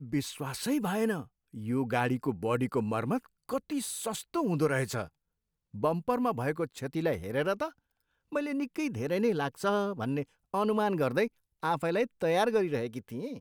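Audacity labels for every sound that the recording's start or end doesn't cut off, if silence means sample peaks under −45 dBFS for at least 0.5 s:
5.740000	7.700000	sound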